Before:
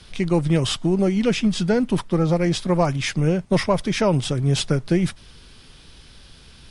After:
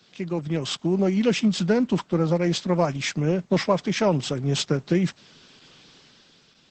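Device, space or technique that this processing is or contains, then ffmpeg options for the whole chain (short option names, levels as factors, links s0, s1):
video call: -af "highpass=f=150:w=0.5412,highpass=f=150:w=1.3066,dynaudnorm=f=120:g=13:m=3.16,volume=0.447" -ar 48000 -c:a libopus -b:a 12k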